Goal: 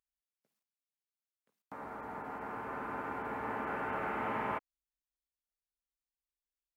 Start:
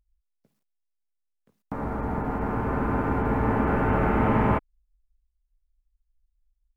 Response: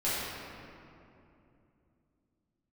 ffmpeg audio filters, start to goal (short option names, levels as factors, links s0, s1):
-af "highpass=f=1000:p=1,volume=0.473"